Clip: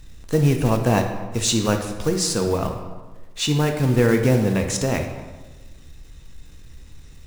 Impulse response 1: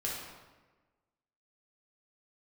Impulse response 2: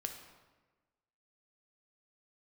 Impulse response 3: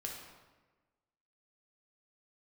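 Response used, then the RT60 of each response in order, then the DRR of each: 2; 1.3, 1.3, 1.3 seconds; −5.0, 4.0, −1.0 decibels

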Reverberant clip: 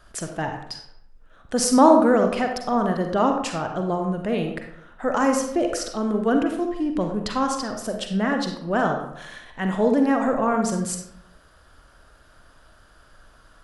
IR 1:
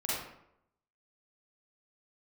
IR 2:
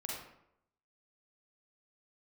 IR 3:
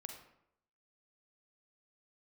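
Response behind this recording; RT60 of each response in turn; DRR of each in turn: 3; 0.75, 0.75, 0.75 seconds; −8.0, −3.5, 3.5 decibels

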